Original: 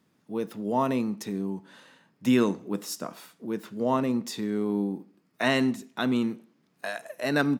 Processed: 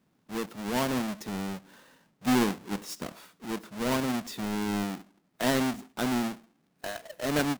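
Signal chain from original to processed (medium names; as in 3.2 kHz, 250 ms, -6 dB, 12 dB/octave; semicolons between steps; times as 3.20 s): square wave that keeps the level; endings held to a fixed fall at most 430 dB/s; trim -7 dB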